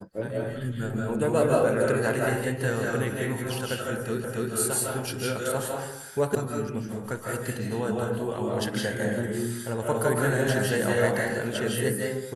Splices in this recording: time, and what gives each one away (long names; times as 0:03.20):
0:04.24: the same again, the last 0.28 s
0:06.35: cut off before it has died away